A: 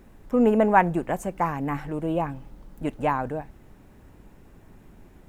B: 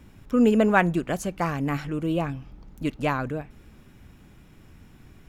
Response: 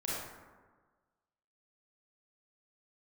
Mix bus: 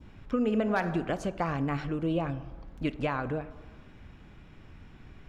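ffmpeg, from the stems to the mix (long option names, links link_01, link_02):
-filter_complex "[0:a]equalizer=frequency=600:width=6.4:gain=7,flanger=delay=20:depth=2.9:speed=0.48,volume=-17.5dB,asplit=2[link_01][link_02];[1:a]lowpass=3900,asoftclip=type=hard:threshold=-9dB,volume=-1,volume=1dB,asplit=2[link_03][link_04];[link_04]volume=-20.5dB[link_05];[link_02]apad=whole_len=233118[link_06];[link_03][link_06]sidechaincompress=threshold=-46dB:ratio=4:attack=27:release=126[link_07];[2:a]atrim=start_sample=2205[link_08];[link_05][link_08]afir=irnorm=-1:irlink=0[link_09];[link_01][link_07][link_09]amix=inputs=3:normalize=0,adynamicequalizer=threshold=0.00251:dfrequency=2000:dqfactor=1.1:tfrequency=2000:tqfactor=1.1:attack=5:release=100:ratio=0.375:range=2.5:mode=cutabove:tftype=bell,equalizer=frequency=210:width=0.54:gain=-3.5"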